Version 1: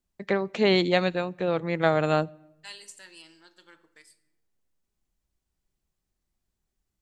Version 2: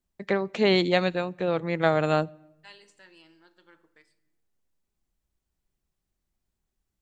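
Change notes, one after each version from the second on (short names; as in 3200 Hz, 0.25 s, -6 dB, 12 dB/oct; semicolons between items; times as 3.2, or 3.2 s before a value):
second voice: add tape spacing loss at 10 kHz 23 dB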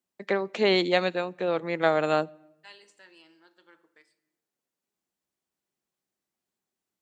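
master: add HPF 250 Hz 12 dB/oct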